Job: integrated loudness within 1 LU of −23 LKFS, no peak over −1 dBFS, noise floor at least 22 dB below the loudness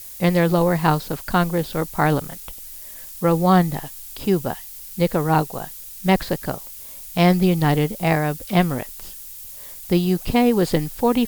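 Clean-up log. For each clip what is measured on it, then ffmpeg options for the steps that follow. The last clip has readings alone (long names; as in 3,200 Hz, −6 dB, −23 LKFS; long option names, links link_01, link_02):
background noise floor −38 dBFS; target noise floor −43 dBFS; integrated loudness −20.5 LKFS; sample peak −3.5 dBFS; target loudness −23.0 LKFS
→ -af "afftdn=noise_reduction=6:noise_floor=-38"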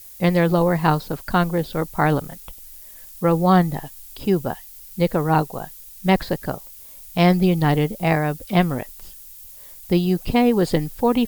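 background noise floor −42 dBFS; target noise floor −43 dBFS
→ -af "afftdn=noise_reduction=6:noise_floor=-42"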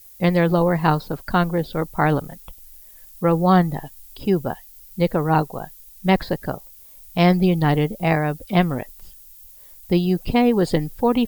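background noise floor −45 dBFS; integrated loudness −20.5 LKFS; sample peak −3.5 dBFS; target loudness −23.0 LKFS
→ -af "volume=-2.5dB"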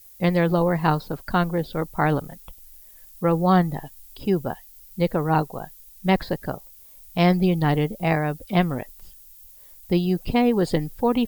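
integrated loudness −23.0 LKFS; sample peak −6.0 dBFS; background noise floor −48 dBFS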